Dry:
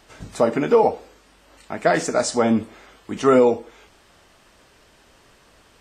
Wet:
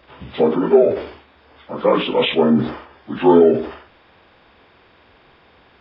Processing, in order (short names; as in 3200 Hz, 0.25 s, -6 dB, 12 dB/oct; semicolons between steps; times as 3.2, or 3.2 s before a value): inharmonic rescaling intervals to 75%; sustainer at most 100 dB/s; gain +4 dB